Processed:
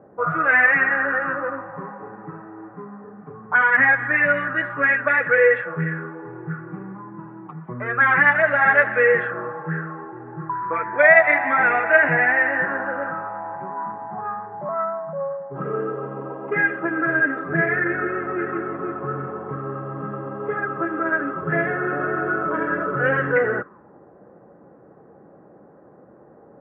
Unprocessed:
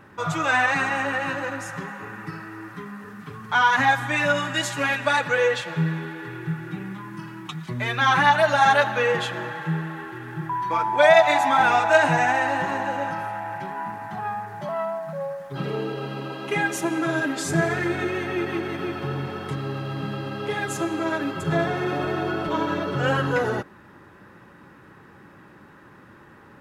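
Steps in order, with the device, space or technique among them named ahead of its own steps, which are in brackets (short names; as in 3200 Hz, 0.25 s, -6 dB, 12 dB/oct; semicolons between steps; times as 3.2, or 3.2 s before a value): envelope filter bass rig (envelope low-pass 700–2000 Hz up, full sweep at -19 dBFS; speaker cabinet 76–2300 Hz, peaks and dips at 100 Hz -9 dB, 480 Hz +7 dB, 900 Hz -10 dB); gain -1.5 dB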